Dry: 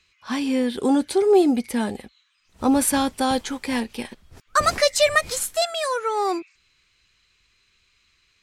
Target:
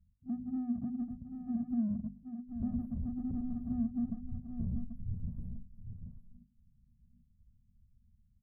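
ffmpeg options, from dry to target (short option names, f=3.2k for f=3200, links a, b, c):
-filter_complex "[0:a]afftfilt=real='re*(1-between(b*sr/4096,250,11000))':imag='im*(1-between(b*sr/4096,250,11000))':win_size=4096:overlap=0.75,asplit=2[a][b];[b]asoftclip=type=tanh:threshold=-26dB,volume=-8dB[c];[a][c]amix=inputs=2:normalize=0,adynamicequalizer=threshold=0.0141:dfrequency=250:dqfactor=4.9:tfrequency=250:tqfactor=4.9:attack=5:release=100:ratio=0.375:range=2:mode=boostabove:tftype=bell,acompressor=threshold=-29dB:ratio=6,alimiter=level_in=8.5dB:limit=-24dB:level=0:latency=1:release=17,volume=-8.5dB,adynamicsmooth=sensitivity=3.5:basefreq=540,bandreject=f=50:t=h:w=6,bandreject=f=100:t=h:w=6,bandreject=f=150:t=h:w=6,bandreject=f=200:t=h:w=6,bandreject=f=250:t=h:w=6,aecho=1:1:786:0.398,volume=5dB"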